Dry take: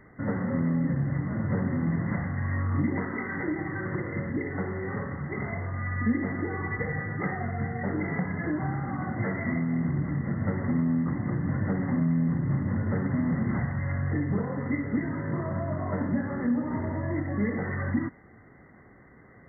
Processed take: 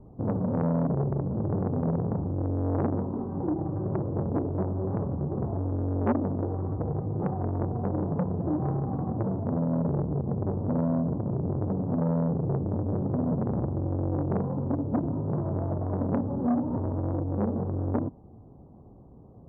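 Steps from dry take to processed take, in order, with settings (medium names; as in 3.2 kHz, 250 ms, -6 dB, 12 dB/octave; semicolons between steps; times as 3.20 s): gain riding 2 s; steep low-pass 970 Hz 48 dB/octave; bass shelf 160 Hz +8.5 dB; transformer saturation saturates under 650 Hz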